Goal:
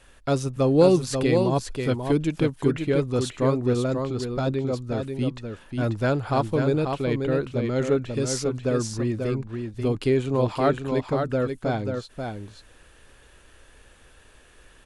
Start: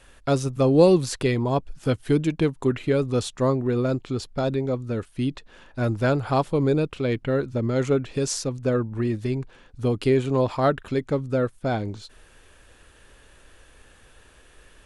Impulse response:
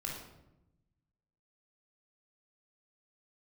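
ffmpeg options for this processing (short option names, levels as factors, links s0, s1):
-af "aecho=1:1:538:0.531,volume=0.841"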